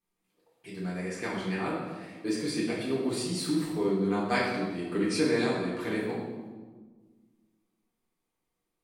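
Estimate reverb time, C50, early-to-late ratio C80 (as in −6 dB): 1.4 s, 1.0 dB, 3.5 dB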